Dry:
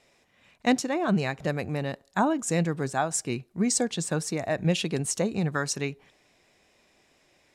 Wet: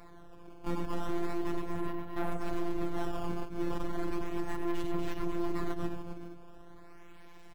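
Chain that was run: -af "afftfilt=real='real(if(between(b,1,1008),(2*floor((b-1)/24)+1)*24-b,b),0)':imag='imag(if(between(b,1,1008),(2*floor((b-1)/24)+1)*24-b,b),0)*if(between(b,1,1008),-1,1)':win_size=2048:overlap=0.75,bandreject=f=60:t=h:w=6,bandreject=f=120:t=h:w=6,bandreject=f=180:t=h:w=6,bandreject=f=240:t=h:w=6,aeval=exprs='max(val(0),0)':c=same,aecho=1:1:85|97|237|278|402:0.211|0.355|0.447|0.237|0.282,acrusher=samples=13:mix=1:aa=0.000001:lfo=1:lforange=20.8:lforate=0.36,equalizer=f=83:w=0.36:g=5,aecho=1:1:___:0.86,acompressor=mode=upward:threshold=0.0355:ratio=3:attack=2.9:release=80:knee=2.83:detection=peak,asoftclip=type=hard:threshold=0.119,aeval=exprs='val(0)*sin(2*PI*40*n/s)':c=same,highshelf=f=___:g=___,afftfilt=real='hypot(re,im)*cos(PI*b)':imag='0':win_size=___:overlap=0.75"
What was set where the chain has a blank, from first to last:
2.8, 2400, -12, 1024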